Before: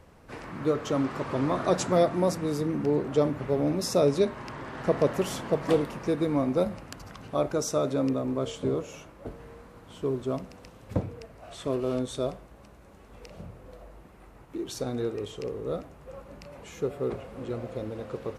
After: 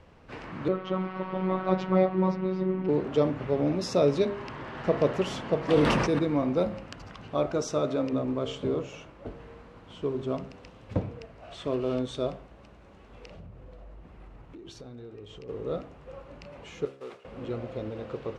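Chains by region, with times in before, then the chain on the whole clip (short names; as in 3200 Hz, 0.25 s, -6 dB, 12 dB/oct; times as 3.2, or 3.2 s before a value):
0.68–2.89 comb 6.3 ms, depth 83% + robotiser 187 Hz + air absorption 280 m
5.73–6.19 bell 8100 Hz +5.5 dB 1.2 oct + notch 6900 Hz + sustainer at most 25 dB/s
13.34–15.49 low shelf 150 Hz +8 dB + compressor 4:1, threshold -43 dBFS + mismatched tape noise reduction decoder only
16.85–17.25 delta modulation 64 kbps, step -49 dBFS + HPF 1500 Hz 6 dB/oct + expander -43 dBFS
whole clip: LPF 5000 Hz 12 dB/oct; bell 2900 Hz +3.5 dB 0.47 oct; de-hum 67.32 Hz, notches 29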